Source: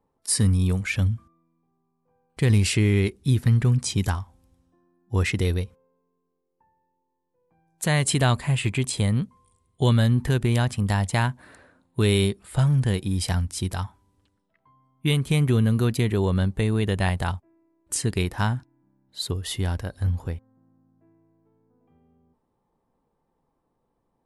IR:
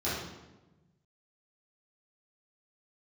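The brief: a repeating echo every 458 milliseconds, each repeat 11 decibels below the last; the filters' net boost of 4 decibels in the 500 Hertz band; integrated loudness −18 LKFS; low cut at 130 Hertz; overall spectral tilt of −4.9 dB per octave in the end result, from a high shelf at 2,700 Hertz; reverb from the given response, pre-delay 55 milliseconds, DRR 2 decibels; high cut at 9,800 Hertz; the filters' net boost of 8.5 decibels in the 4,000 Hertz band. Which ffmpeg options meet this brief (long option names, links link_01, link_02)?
-filter_complex "[0:a]highpass=130,lowpass=9800,equalizer=frequency=500:width_type=o:gain=5,highshelf=frequency=2700:gain=5,equalizer=frequency=4000:width_type=o:gain=6.5,aecho=1:1:458|916|1374:0.282|0.0789|0.0221,asplit=2[link_01][link_02];[1:a]atrim=start_sample=2205,adelay=55[link_03];[link_02][link_03]afir=irnorm=-1:irlink=0,volume=-10.5dB[link_04];[link_01][link_04]amix=inputs=2:normalize=0,volume=2dB"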